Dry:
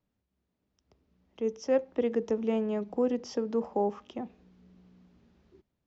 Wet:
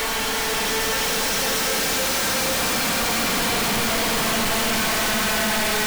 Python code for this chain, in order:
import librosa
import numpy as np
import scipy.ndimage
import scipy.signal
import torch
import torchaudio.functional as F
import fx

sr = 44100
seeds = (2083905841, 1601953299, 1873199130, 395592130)

y = (np.mod(10.0 ** (32.0 / 20.0) * x + 1.0, 2.0) - 1.0) / 10.0 ** (32.0 / 20.0)
y = fx.paulstretch(y, sr, seeds[0], factor=4.0, window_s=1.0, from_s=1.25)
y = fx.leveller(y, sr, passes=5)
y = y * 10.0 ** (5.5 / 20.0)